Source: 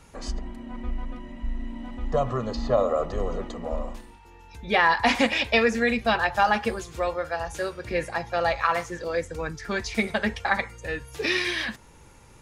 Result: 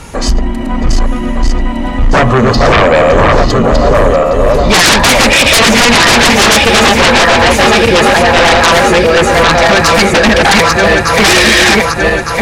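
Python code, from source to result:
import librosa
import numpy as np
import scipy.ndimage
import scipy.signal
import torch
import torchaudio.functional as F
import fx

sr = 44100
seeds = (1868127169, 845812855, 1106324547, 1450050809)

y = fx.reverse_delay_fb(x, sr, ms=605, feedback_pct=69, wet_db=-3.0)
y = fx.fold_sine(y, sr, drive_db=19, ceiling_db=-3.0)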